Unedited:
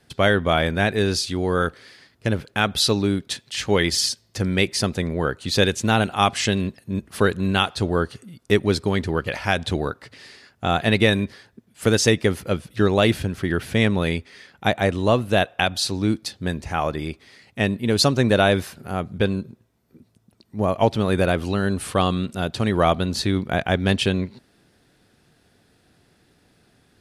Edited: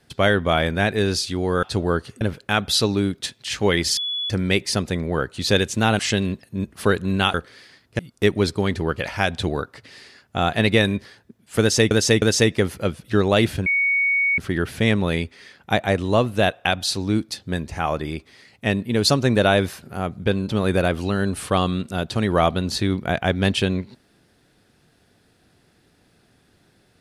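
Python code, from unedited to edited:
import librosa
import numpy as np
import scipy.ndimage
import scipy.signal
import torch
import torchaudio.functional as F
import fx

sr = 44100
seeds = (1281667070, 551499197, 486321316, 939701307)

y = fx.edit(x, sr, fx.swap(start_s=1.63, length_s=0.65, other_s=7.69, other_length_s=0.58),
    fx.bleep(start_s=4.04, length_s=0.33, hz=3410.0, db=-23.0),
    fx.cut(start_s=6.06, length_s=0.28),
    fx.repeat(start_s=11.88, length_s=0.31, count=3),
    fx.insert_tone(at_s=13.32, length_s=0.72, hz=2230.0, db=-16.5),
    fx.cut(start_s=19.43, length_s=1.5), tone=tone)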